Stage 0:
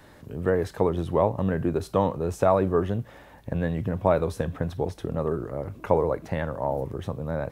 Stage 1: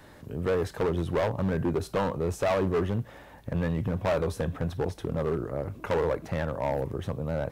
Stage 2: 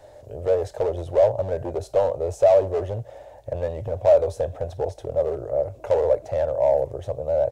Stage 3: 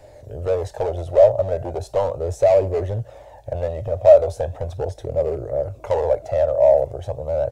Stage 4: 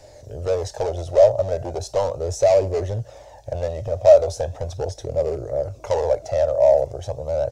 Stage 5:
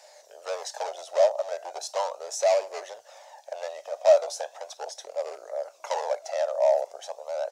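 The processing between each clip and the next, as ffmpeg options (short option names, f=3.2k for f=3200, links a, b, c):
-af "volume=21.5dB,asoftclip=hard,volume=-21.5dB"
-af "firequalizer=gain_entry='entry(120,0);entry(170,-17);entry(590,14);entry(1100,-8);entry(6900,2);entry(12000,-7)':delay=0.05:min_phase=1"
-af "flanger=delay=0.4:depth=1.2:regen=46:speed=0.38:shape=sinusoidal,volume=6.5dB"
-af "equalizer=f=5.7k:t=o:w=0.97:g=12.5,volume=-1dB"
-af "highpass=f=720:w=0.5412,highpass=f=720:w=1.3066"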